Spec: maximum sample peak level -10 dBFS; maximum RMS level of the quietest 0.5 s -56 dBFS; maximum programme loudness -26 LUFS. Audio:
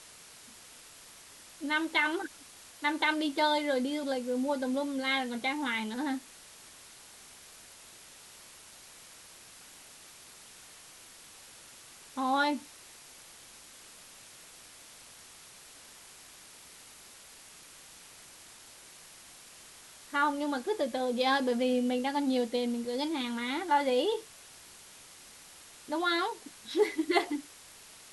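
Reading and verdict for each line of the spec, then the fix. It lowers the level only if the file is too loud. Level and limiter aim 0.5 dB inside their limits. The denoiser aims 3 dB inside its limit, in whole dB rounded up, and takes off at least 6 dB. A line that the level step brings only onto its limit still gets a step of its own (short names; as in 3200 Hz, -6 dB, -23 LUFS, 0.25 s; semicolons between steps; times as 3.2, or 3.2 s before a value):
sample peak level -12.0 dBFS: OK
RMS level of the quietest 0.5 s -53 dBFS: fail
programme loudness -31.0 LUFS: OK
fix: denoiser 6 dB, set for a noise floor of -53 dBFS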